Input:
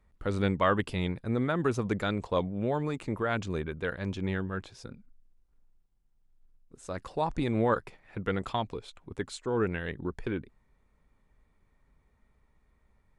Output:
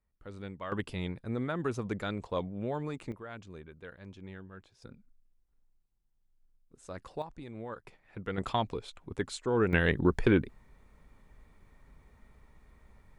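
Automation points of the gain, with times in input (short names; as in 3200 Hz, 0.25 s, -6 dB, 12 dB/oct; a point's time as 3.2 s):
-15 dB
from 0.72 s -5 dB
from 3.12 s -14.5 dB
from 4.82 s -6 dB
from 7.22 s -15.5 dB
from 7.85 s -6 dB
from 8.38 s +1 dB
from 9.73 s +9 dB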